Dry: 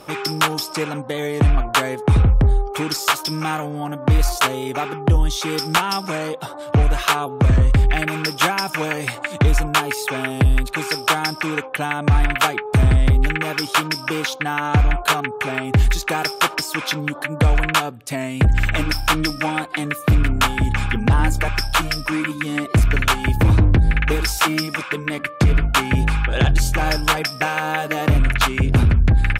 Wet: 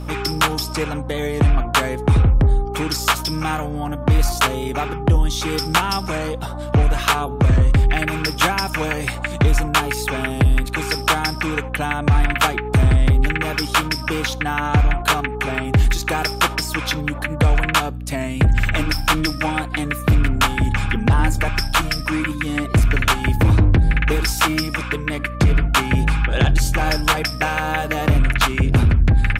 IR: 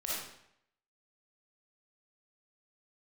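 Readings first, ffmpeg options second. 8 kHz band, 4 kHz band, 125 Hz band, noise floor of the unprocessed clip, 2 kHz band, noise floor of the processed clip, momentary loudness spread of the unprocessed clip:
+0.5 dB, +0.5 dB, +0.5 dB, −34 dBFS, +0.5 dB, −28 dBFS, 8 LU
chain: -filter_complex "[0:a]asplit=2[link_01][link_02];[1:a]atrim=start_sample=2205,atrim=end_sample=4410[link_03];[link_02][link_03]afir=irnorm=-1:irlink=0,volume=-26dB[link_04];[link_01][link_04]amix=inputs=2:normalize=0,aeval=exprs='val(0)+0.0398*(sin(2*PI*60*n/s)+sin(2*PI*2*60*n/s)/2+sin(2*PI*3*60*n/s)/3+sin(2*PI*4*60*n/s)/4+sin(2*PI*5*60*n/s)/5)':channel_layout=same"

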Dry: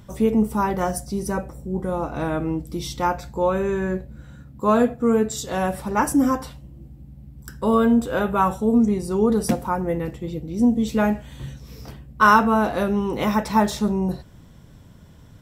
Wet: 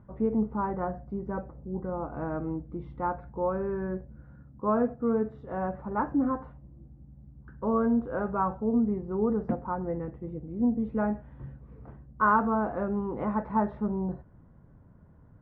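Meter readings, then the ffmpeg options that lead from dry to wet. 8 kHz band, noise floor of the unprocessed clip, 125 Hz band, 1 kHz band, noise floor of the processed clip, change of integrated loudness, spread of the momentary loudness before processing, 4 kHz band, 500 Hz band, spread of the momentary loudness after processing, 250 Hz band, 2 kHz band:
below −40 dB, −47 dBFS, −8.0 dB, −8.5 dB, −55 dBFS, −8.0 dB, 12 LU, below −35 dB, −8.0 dB, 11 LU, −8.0 dB, −11.5 dB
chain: -af "lowpass=frequency=1500:width=0.5412,lowpass=frequency=1500:width=1.3066,volume=-8dB"

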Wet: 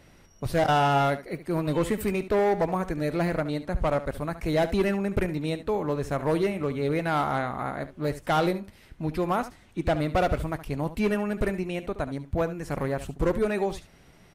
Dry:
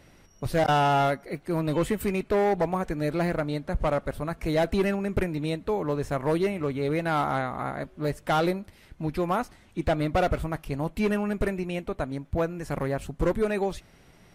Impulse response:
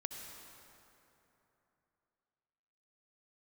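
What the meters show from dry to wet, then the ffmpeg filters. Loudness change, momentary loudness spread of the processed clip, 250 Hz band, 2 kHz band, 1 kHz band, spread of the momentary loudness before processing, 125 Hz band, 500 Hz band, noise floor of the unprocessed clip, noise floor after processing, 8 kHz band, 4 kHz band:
0.0 dB, 8 LU, 0.0 dB, 0.0 dB, 0.0 dB, 8 LU, 0.0 dB, 0.0 dB, −56 dBFS, −55 dBFS, 0.0 dB, 0.0 dB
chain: -af "aecho=1:1:71:0.211"

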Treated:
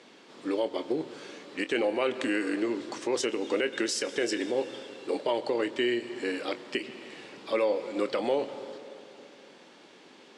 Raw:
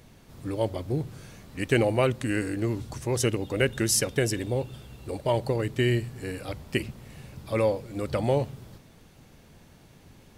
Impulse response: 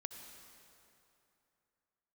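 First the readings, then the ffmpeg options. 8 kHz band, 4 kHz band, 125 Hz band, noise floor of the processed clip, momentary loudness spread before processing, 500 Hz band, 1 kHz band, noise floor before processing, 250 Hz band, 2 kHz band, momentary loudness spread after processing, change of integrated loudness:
−8.0 dB, 0.0 dB, −24.5 dB, −54 dBFS, 16 LU, −1.0 dB, −1.0 dB, −54 dBFS, −2.0 dB, −1.0 dB, 14 LU, −2.5 dB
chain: -filter_complex "[0:a]asplit=2[link_01][link_02];[1:a]atrim=start_sample=2205,adelay=25[link_03];[link_02][link_03]afir=irnorm=-1:irlink=0,volume=-8dB[link_04];[link_01][link_04]amix=inputs=2:normalize=0,alimiter=limit=-20dB:level=0:latency=1:release=172,highpass=frequency=280:width=0.5412,highpass=frequency=280:width=1.3066,equalizer=frequency=670:width_type=q:width=4:gain=-4,equalizer=frequency=3200:width_type=q:width=4:gain=3,equalizer=frequency=6200:width_type=q:width=4:gain=-5,lowpass=frequency=7000:width=0.5412,lowpass=frequency=7000:width=1.3066,volume=5dB"

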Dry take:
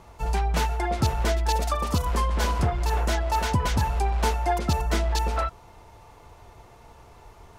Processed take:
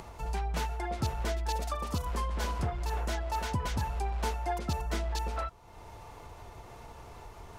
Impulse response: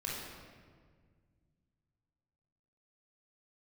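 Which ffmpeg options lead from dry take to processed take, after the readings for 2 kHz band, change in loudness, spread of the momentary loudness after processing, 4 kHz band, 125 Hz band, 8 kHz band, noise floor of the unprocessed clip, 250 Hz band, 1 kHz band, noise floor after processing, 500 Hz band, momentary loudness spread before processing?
−8.5 dB, −8.5 dB, 16 LU, −8.5 dB, −8.5 dB, −8.5 dB, −51 dBFS, −8.5 dB, −8.5 dB, −50 dBFS, −8.5 dB, 2 LU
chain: -af "acompressor=mode=upward:threshold=-28dB:ratio=2.5,volume=-8.5dB"

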